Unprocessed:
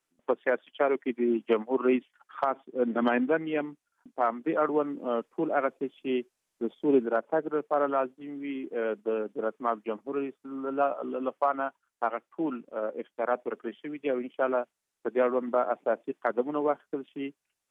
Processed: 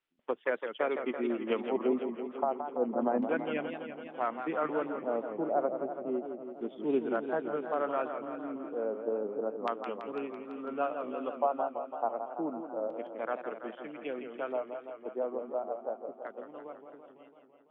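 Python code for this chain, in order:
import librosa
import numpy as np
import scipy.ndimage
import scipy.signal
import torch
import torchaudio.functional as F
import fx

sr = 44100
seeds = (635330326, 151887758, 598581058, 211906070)

y = fx.fade_out_tail(x, sr, length_s=4.91)
y = fx.filter_lfo_lowpass(y, sr, shape='square', hz=0.31, low_hz=770.0, high_hz=3200.0, q=1.8)
y = fx.echo_warbled(y, sr, ms=167, feedback_pct=71, rate_hz=2.8, cents=157, wet_db=-8.0)
y = y * librosa.db_to_amplitude(-6.5)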